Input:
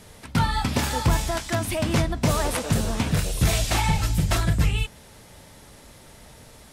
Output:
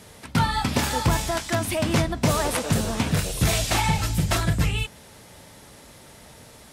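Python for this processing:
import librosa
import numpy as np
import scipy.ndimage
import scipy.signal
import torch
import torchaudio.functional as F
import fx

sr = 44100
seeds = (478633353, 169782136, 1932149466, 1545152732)

y = fx.highpass(x, sr, hz=85.0, slope=6)
y = y * 10.0 ** (1.5 / 20.0)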